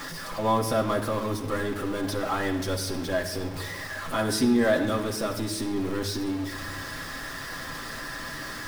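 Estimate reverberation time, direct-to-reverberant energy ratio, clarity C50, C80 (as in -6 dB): 1.2 s, -0.5 dB, 9.5 dB, 11.0 dB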